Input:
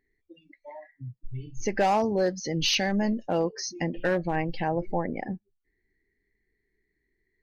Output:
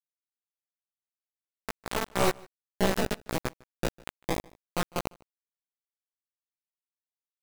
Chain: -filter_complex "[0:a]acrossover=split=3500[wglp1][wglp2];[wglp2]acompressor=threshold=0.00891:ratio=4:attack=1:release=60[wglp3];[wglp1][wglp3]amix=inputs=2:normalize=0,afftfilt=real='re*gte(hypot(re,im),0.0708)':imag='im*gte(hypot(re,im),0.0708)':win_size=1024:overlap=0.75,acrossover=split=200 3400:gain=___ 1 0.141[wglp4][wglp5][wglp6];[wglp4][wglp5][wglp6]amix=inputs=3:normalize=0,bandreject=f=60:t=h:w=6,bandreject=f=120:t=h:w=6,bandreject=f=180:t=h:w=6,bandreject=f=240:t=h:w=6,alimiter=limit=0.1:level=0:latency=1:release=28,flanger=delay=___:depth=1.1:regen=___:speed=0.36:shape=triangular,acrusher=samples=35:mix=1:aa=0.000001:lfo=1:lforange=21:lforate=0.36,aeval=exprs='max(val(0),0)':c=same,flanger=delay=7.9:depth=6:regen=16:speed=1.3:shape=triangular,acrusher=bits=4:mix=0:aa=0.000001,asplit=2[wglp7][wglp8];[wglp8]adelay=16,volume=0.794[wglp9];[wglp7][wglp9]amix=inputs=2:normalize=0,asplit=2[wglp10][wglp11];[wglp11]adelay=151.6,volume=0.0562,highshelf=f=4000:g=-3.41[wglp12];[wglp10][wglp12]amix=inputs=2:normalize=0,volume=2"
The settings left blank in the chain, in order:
0.158, 5.1, 47